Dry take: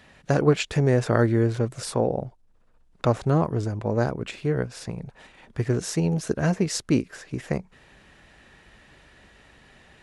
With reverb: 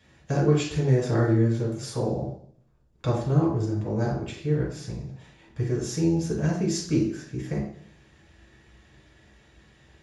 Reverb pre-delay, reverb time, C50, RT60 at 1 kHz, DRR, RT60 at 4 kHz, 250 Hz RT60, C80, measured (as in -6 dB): 3 ms, 0.60 s, 4.0 dB, 0.55 s, -5.0 dB, 0.65 s, 0.65 s, 8.5 dB